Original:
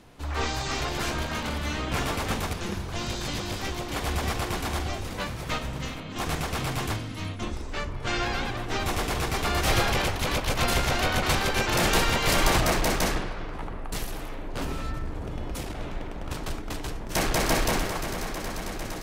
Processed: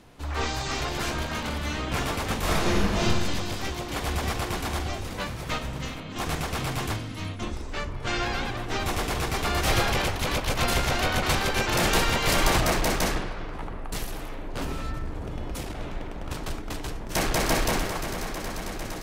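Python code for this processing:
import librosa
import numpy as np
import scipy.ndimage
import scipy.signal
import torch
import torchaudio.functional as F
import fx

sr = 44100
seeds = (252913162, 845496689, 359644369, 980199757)

y = fx.reverb_throw(x, sr, start_s=2.4, length_s=0.63, rt60_s=1.5, drr_db=-8.0)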